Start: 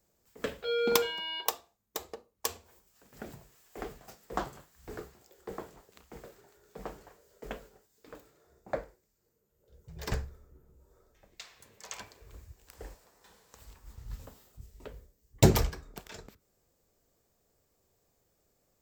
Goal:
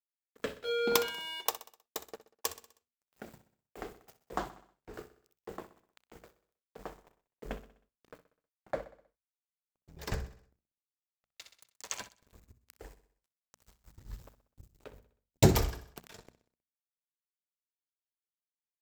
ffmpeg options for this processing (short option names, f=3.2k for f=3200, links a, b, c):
-filter_complex "[0:a]aeval=exprs='sgn(val(0))*max(abs(val(0))-0.00335,0)':c=same,asettb=1/sr,asplit=3[a][b][c];[a]atrim=end=4.514[d];[b]atrim=start=4.51:end=4.94,asetpts=PTS-STARTPTS,afade=t=in:d=0.004:c=qsin,afade=t=out:st=0.426:d=0.004:c=qsin,lowpass=f=3.2k:p=1[e];[c]atrim=start=4.936[f];[d][e]acrossfade=d=0.004:c1=hsin:c2=qsin[g];[g][f]acrossfade=d=0.004:c1=qsin:c2=hsin,asettb=1/sr,asplit=3[h][i][j];[h]atrim=end=6.954[k];[i]atrim=start=6.95:end=8.14,asetpts=PTS-STARTPTS,afade=t=in:d=0.004:c=qsin,afade=t=out:st=1.186:d=0.004:c=qsin,lowshelf=f=290:g=8.5[l];[j]atrim=start=8.136[m];[k][l]acrossfade=d=0.004:c1=hsin:c2=qsin[n];[n][m]acrossfade=d=0.004:c1=qsin:c2=hsin,bandreject=f=60:t=h:w=6,bandreject=f=120:t=h:w=6,bandreject=f=180:t=h:w=6,bandreject=f=240:t=h:w=6,aecho=1:1:63|126|189|252|315:0.188|0.0942|0.0471|0.0235|0.0118,asettb=1/sr,asplit=3[o][p][q];[o]atrim=end=11.454[r];[p]atrim=start=11.45:end=12.09,asetpts=PTS-STARTPTS,afade=t=in:d=0.004:c=qsin,afade=t=out:st=0.636:d=0.004:c=qsin,acontrast=76[s];[q]atrim=start=12.086[t];[r][s]acrossfade=d=0.004:c1=hsin:c2=qsin[u];[u][t]acrossfade=d=0.004:c1=qsin:c2=hsin,volume=-1dB"